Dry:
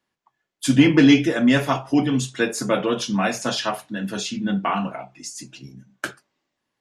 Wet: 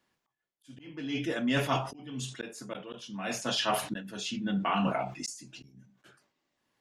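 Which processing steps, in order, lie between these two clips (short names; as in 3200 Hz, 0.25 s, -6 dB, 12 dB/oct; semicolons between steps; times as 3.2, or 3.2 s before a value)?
dynamic EQ 3000 Hz, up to +6 dB, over -43 dBFS, Q 3.3; reverse; compressor 10:1, threshold -27 dBFS, peak gain reduction 19 dB; reverse; auto swell 0.744 s; sustainer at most 110 dB/s; gain +2 dB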